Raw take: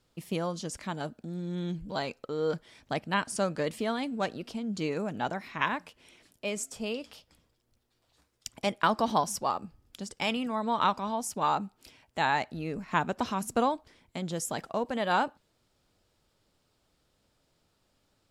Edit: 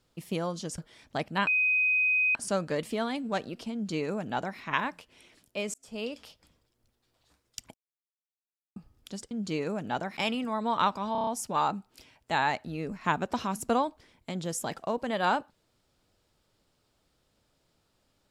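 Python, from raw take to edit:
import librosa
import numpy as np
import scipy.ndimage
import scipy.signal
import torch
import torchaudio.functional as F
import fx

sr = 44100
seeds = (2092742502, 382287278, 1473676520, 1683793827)

y = fx.edit(x, sr, fx.cut(start_s=0.78, length_s=1.76),
    fx.insert_tone(at_s=3.23, length_s=0.88, hz=2510.0, db=-22.0),
    fx.duplicate(start_s=4.61, length_s=0.86, to_s=10.19),
    fx.fade_in_span(start_s=6.62, length_s=0.33),
    fx.silence(start_s=8.62, length_s=1.02),
    fx.stutter(start_s=11.14, slice_s=0.03, count=6), tone=tone)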